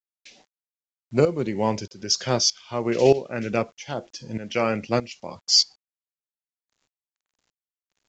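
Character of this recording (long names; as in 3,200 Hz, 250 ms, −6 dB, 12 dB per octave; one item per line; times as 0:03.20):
tremolo saw up 1.6 Hz, depth 80%
a quantiser's noise floor 10 bits, dither none
mu-law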